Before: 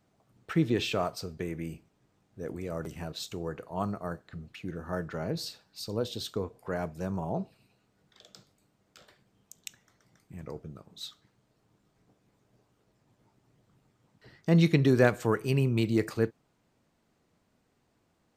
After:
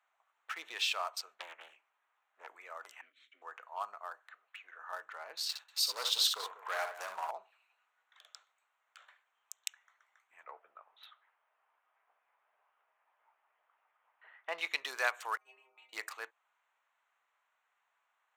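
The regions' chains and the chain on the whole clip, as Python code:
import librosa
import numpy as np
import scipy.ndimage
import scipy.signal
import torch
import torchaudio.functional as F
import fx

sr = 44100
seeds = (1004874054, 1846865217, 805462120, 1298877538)

y = fx.chain(x, sr, fx.high_shelf(hz=6100.0, db=-6.0),
    fx.doppler_dist(depth_ms=0.91), at=(1.34, 2.47))
y = fx.chain(y, sr, fx.lower_of_two(delay_ms=7.9),
    fx.vowel_filter(vowel='i'),
    fx.low_shelf(hz=430.0, db=10.0), at=(3.01, 3.42))
y = fx.chain(y, sr, fx.highpass(hz=480.0, slope=12),
    fx.high_shelf(hz=5500.0, db=-9.5), at=(4.35, 4.8))
y = fx.chain(y, sr, fx.leveller(passes=2),
    fx.echo_multitap(ms=(63, 192), db=(-6.0, -13.0)), at=(5.49, 7.31))
y = fx.chain(y, sr, fx.lowpass(hz=3100.0, slope=24),
    fx.peak_eq(hz=630.0, db=5.5, octaves=1.3), at=(10.43, 14.68))
y = fx.chain(y, sr, fx.peak_eq(hz=740.0, db=13.5, octaves=0.61),
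    fx.level_steps(step_db=17),
    fx.stiff_resonator(f0_hz=93.0, decay_s=0.46, stiffness=0.008), at=(15.37, 15.93))
y = fx.wiener(y, sr, points=9)
y = scipy.signal.sosfilt(scipy.signal.butter(4, 970.0, 'highpass', fs=sr, output='sos'), y)
y = fx.dynamic_eq(y, sr, hz=1600.0, q=1.4, threshold_db=-50.0, ratio=4.0, max_db=-5)
y = y * librosa.db_to_amplitude(3.0)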